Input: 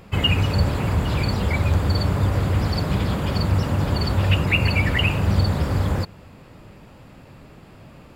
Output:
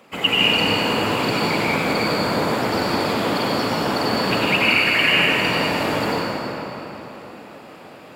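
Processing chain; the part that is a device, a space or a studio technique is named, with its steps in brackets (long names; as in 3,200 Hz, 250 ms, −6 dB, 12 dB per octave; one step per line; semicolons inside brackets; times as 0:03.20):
0:04.48–0:04.96: Butterworth high-pass 1,100 Hz
whispering ghost (random phases in short frames; high-pass filter 360 Hz 12 dB per octave; convolution reverb RT60 3.9 s, pre-delay 84 ms, DRR −7.5 dB)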